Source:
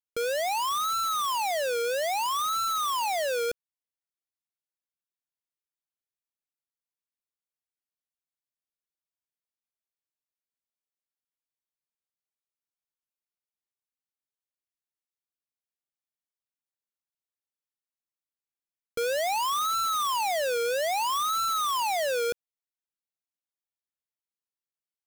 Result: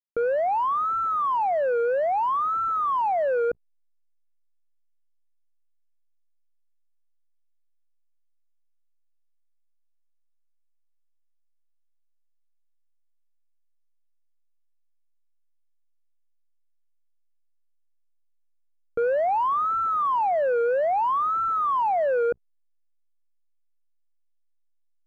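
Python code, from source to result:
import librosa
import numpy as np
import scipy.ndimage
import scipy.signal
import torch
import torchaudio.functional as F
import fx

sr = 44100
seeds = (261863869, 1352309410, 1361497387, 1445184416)

y = scipy.signal.sosfilt(scipy.signal.butter(4, 1400.0, 'lowpass', fs=sr, output='sos'), x)
y = fx.hum_notches(y, sr, base_hz=60, count=3)
y = fx.backlash(y, sr, play_db=-58.0)
y = y * librosa.db_to_amplitude(5.5)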